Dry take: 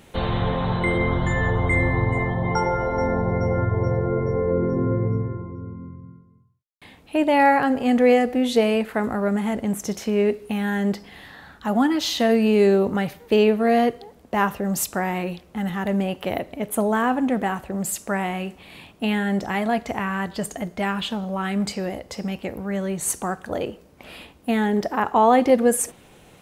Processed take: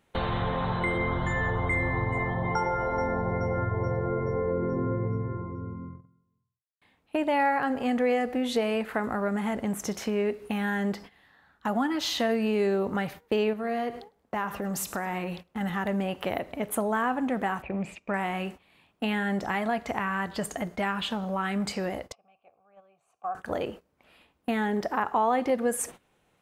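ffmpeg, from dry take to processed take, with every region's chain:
-filter_complex "[0:a]asettb=1/sr,asplit=3[s0][s1][s2];[s0]atrim=end=13.534[s3];[s1]atrim=start=13.53:end=15.61,asetpts=PTS-STARTPTS,afade=t=in:d=0.004:c=qsin,afade=t=out:st=2.076:d=0.004:c=qsin,acompressor=threshold=0.0447:ratio=2.5:attack=3.2:release=140:knee=1:detection=peak,aecho=1:1:104|208|312:0.168|0.0504|0.0151,atrim=end_sample=91728[s4];[s2]atrim=start=15.606[s5];[s3][s4]acrossfade=d=0.004:c1=hsin:c2=qsin[s6];[s6][s5]acrossfade=d=0.004:c1=qsin:c2=hsin,asettb=1/sr,asplit=3[s7][s8][s9];[s7]atrim=end=17.624[s10];[s8]atrim=start=17.62:end=18.14,asetpts=PTS-STARTPTS,afade=t=in:d=0.004:c=qsin,afade=t=out:st=0.516:d=0.004:c=qsin,lowpass=f=2400:t=q:w=15,equalizer=f=1700:t=o:w=1.4:g=-12.5[s11];[s9]atrim=start=18.136[s12];[s10][s11]acrossfade=d=0.004:c1=hsin:c2=qsin[s13];[s13][s12]acrossfade=d=0.004:c1=qsin:c2=hsin,asettb=1/sr,asplit=3[s14][s15][s16];[s14]atrim=end=22.124[s17];[s15]atrim=start=22.12:end=23.35,asetpts=PTS-STARTPTS,afade=t=in:d=0.004:c=qsin,afade=t=out:st=1.226:d=0.004:c=qsin,asplit=3[s18][s19][s20];[s18]bandpass=f=730:t=q:w=8,volume=1[s21];[s19]bandpass=f=1090:t=q:w=8,volume=0.501[s22];[s20]bandpass=f=2440:t=q:w=8,volume=0.355[s23];[s21][s22][s23]amix=inputs=3:normalize=0,lowshelf=f=170:t=q:w=1.5:g=7[s24];[s16]atrim=start=23.346[s25];[s17][s24]acrossfade=d=0.004:c1=hsin:c2=qsin[s26];[s26][s25]acrossfade=d=0.004:c1=qsin:c2=hsin,agate=range=0.126:threshold=0.0141:ratio=16:detection=peak,equalizer=f=1300:w=0.71:g=5.5,acompressor=threshold=0.0501:ratio=2,volume=0.75"

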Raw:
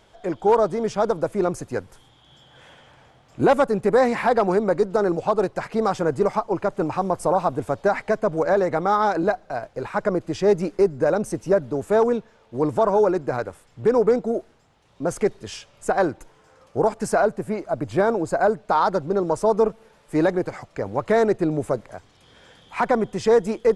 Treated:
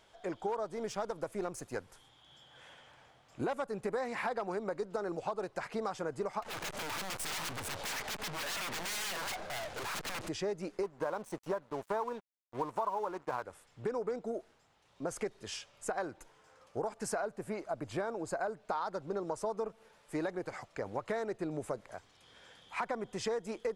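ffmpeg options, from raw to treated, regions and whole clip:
-filter_complex "[0:a]asettb=1/sr,asplit=3[s0][s1][s2];[s0]atrim=end=0.654[s3];[s1]atrim=start=0.65:end=1.77,asetpts=PTS-STARTPTS,afade=t=in:d=0.004:c=qsin,afade=t=out:st=1.116:d=0.004:c=qsin,aeval=exprs='if(lt(val(0),0),0.708*val(0),val(0))':c=same,highshelf=f=9400:g=6[s4];[s2]atrim=start=1.766[s5];[s3][s4]acrossfade=d=0.004:c1=hsin:c2=qsin[s6];[s6][s5]acrossfade=d=0.004:c1=qsin:c2=hsin,asettb=1/sr,asplit=3[s7][s8][s9];[s7]atrim=end=6.424[s10];[s8]atrim=start=6.42:end=10.29,asetpts=PTS-STARTPTS,afade=t=in:d=0.004:c=qsin,afade=t=out:st=3.866:d=0.004:c=qsin,aeval=exprs='0.355*sin(PI/2*8.91*val(0)/0.355)':c=same,aeval=exprs='(tanh(35.5*val(0)+0.45)-tanh(0.45))/35.5':c=same[s11];[s9]atrim=start=10.286[s12];[s10][s11]acrossfade=d=0.004:c1=hsin:c2=qsin[s13];[s13][s12]acrossfade=d=0.004:c1=qsin:c2=hsin,asettb=1/sr,asplit=3[s14][s15][s16];[s14]atrim=end=10.834[s17];[s15]atrim=start=10.83:end=13.43,asetpts=PTS-STARTPTS,afade=t=in:d=0.004:c=qsin,afade=t=out:st=2.596:d=0.004:c=qsin,equalizer=f=1000:t=o:w=0.58:g=14.5,bandreject=f=5000:w=14,aeval=exprs='sgn(val(0))*max(abs(val(0))-0.0133,0)':c=same[s18];[s16]atrim=start=13.426[s19];[s17][s18]acrossfade=d=0.004:c1=hsin:c2=qsin[s20];[s20][s19]acrossfade=d=0.004:c1=qsin:c2=hsin,lowshelf=f=490:g=-8,acompressor=threshold=0.0447:ratio=6,volume=0.531"

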